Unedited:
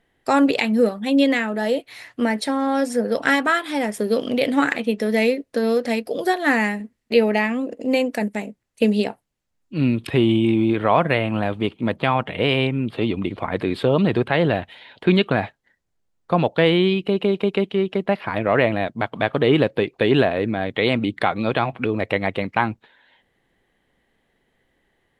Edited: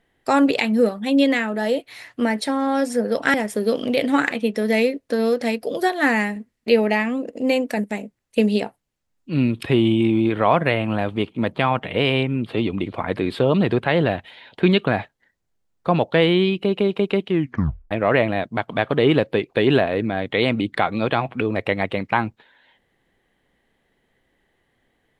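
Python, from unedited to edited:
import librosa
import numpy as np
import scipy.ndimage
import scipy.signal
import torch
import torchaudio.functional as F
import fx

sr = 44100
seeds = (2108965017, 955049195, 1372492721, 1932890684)

y = fx.edit(x, sr, fx.cut(start_s=3.34, length_s=0.44),
    fx.tape_stop(start_s=17.73, length_s=0.62), tone=tone)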